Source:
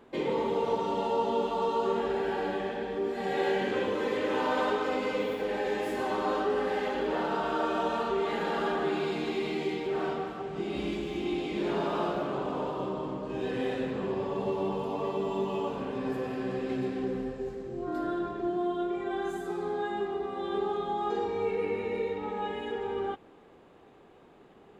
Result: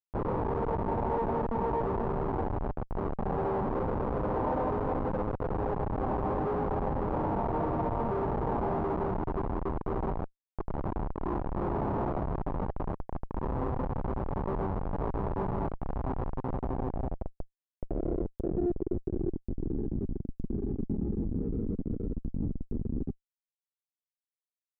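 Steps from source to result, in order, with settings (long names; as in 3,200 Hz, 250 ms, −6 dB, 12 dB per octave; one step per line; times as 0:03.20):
comparator with hysteresis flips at −27 dBFS
low-pass filter sweep 930 Hz → 260 Hz, 0:16.34–0:20.02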